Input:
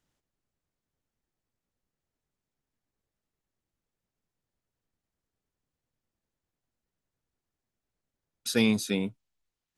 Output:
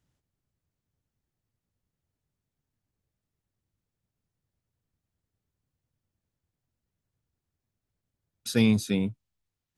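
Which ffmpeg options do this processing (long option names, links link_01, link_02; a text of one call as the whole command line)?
ffmpeg -i in.wav -af "equalizer=frequency=97:width_type=o:width=1.9:gain=12,volume=-2dB" out.wav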